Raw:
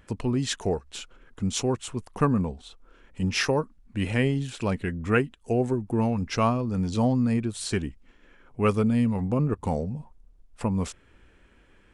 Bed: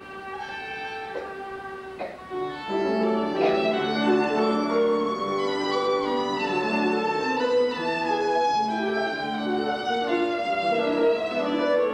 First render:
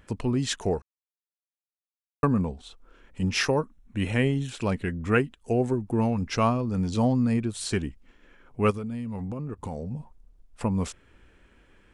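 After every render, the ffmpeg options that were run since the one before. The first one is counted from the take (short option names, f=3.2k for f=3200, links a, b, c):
-filter_complex "[0:a]asettb=1/sr,asplit=3[a][b][c];[a]atrim=end=3.554[d];[b]atrim=start=3.55:end=4.49,asetpts=PTS-STARTPTS,afade=t=in:d=0.004:c=qsin,afade=t=out:st=0.936:d=0.004:c=qsin,asuperstop=centerf=4700:order=12:qfactor=5.6[e];[c]atrim=start=4.486[f];[d][e]acrossfade=d=0.004:c1=hsin:c2=qsin[g];[g][f]acrossfade=d=0.004:c1=qsin:c2=hsin,asplit=3[h][i][j];[h]afade=t=out:st=8.7:d=0.02[k];[i]acompressor=threshold=-30dB:ratio=6:attack=3.2:release=140:knee=1:detection=peak,afade=t=in:st=8.7:d=0.02,afade=t=out:st=9.9:d=0.02[l];[j]afade=t=in:st=9.9:d=0.02[m];[k][l][m]amix=inputs=3:normalize=0,asplit=3[n][o][p];[n]atrim=end=0.82,asetpts=PTS-STARTPTS,afade=t=out:st=0.816:d=0.004:c=hsin[q];[o]atrim=start=0.82:end=2.23,asetpts=PTS-STARTPTS,volume=0[r];[p]atrim=start=2.23,asetpts=PTS-STARTPTS,afade=t=in:d=0.004:c=hsin[s];[q][r][s]concat=n=3:v=0:a=1"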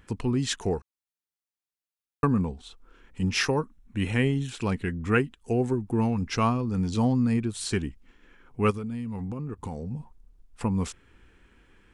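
-af "equalizer=f=600:t=o:w=0.34:g=-8.5"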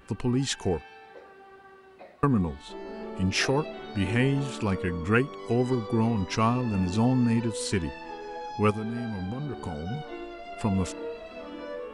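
-filter_complex "[1:a]volume=-15dB[a];[0:a][a]amix=inputs=2:normalize=0"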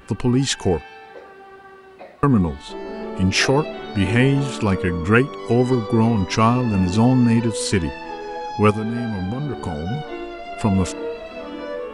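-af "volume=8dB,alimiter=limit=-3dB:level=0:latency=1"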